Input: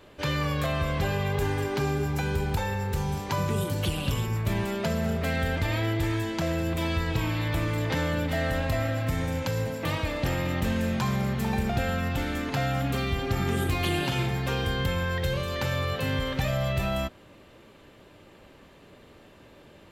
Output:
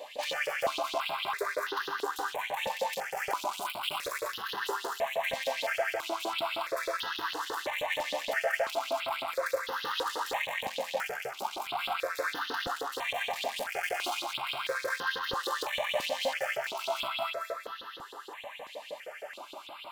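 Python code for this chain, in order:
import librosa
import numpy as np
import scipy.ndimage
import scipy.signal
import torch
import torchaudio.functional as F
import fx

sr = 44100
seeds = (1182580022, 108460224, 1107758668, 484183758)

p1 = fx.tracing_dist(x, sr, depth_ms=0.049)
p2 = scipy.signal.sosfilt(scipy.signal.butter(4, 65.0, 'highpass', fs=sr, output='sos'), p1)
p3 = fx.over_compress(p2, sr, threshold_db=-33.0, ratio=-1.0)
p4 = p2 + (p3 * librosa.db_to_amplitude(2.0))
p5 = fx.echo_split(p4, sr, split_hz=540.0, low_ms=159, high_ms=224, feedback_pct=52, wet_db=-5.5)
p6 = np.clip(10.0 ** (28.0 / 20.0) * p5, -1.0, 1.0) / 10.0 ** (28.0 / 20.0)
p7 = fx.filter_lfo_highpass(p6, sr, shape='saw_up', hz=6.4, low_hz=420.0, high_hz=4100.0, q=4.4)
p8 = fx.phaser_held(p7, sr, hz=3.0, low_hz=370.0, high_hz=2300.0)
y = p8 * librosa.db_to_amplitude(-1.5)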